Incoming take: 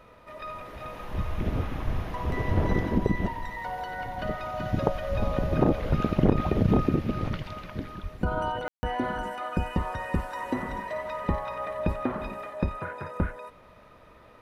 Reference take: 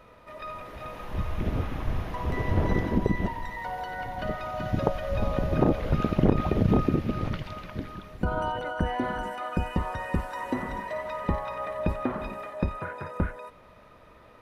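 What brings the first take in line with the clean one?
high-pass at the plosives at 0:08.02
ambience match 0:08.68–0:08.83

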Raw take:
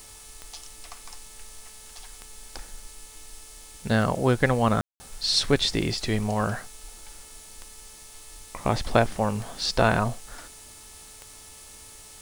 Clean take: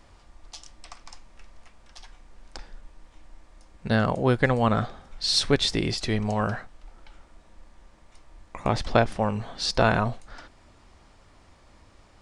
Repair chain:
click removal
hum removal 434.2 Hz, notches 40
ambience match 0:04.81–0:05.00
broadband denoise 8 dB, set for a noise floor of −47 dBFS

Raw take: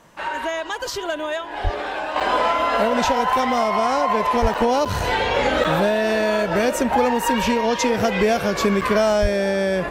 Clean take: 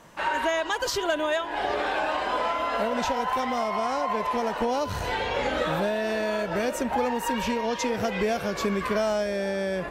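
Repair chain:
high-pass at the plosives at 0:01.63/0:04.41/0:09.21
repair the gap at 0:02.20/0:04.54/0:04.85/0:05.64/0:08.81, 6.6 ms
level correction −7.5 dB, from 0:02.16

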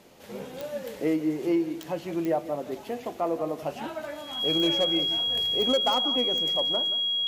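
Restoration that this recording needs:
clipped peaks rebuilt −17 dBFS
click removal
notch filter 3,300 Hz, Q 30
echo removal 176 ms −14 dB

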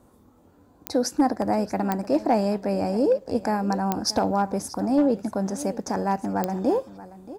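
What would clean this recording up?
clipped peaks rebuilt −13 dBFS
click removal
echo removal 630 ms −17 dB

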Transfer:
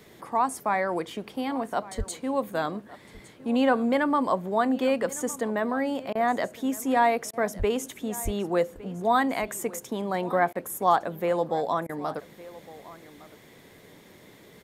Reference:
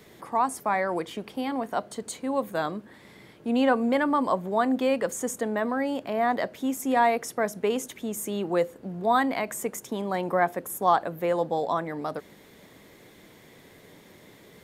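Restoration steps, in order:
click removal
0:01.97–0:02.09: high-pass filter 140 Hz 24 dB per octave
0:07.58–0:07.70: high-pass filter 140 Hz 24 dB per octave
0:08.24–0:08.36: high-pass filter 140 Hz 24 dB per octave
repair the gap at 0:06.13/0:07.31/0:10.53/0:11.87, 21 ms
echo removal 1,160 ms −19 dB

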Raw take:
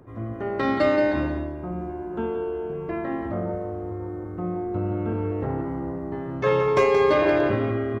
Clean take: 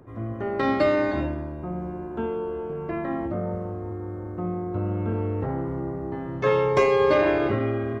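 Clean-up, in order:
clipped peaks rebuilt −10.5 dBFS
echo removal 176 ms −8 dB

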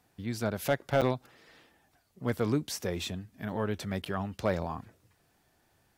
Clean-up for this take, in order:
clipped peaks rebuilt −16.5 dBFS
repair the gap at 0:01.01/0:04.05, 7 ms

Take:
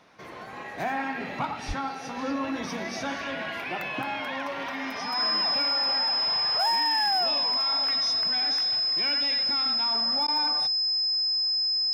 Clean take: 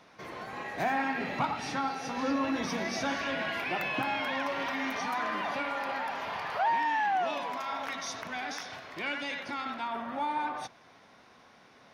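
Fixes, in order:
clipped peaks rebuilt −18.5 dBFS
notch filter 5,100 Hz, Q 30
0:01.67–0:01.79: high-pass filter 140 Hz 24 dB per octave
repair the gap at 0:10.27, 10 ms

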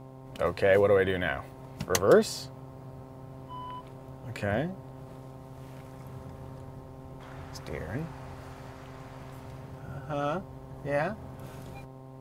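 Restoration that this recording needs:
hum removal 131.6 Hz, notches 8

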